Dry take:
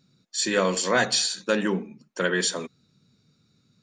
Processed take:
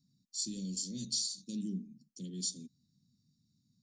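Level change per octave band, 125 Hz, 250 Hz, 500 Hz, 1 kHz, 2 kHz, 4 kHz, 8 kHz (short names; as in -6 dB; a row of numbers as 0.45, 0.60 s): -9.0 dB, -10.5 dB, -31.0 dB, under -40 dB, under -40 dB, -12.0 dB, -9.0 dB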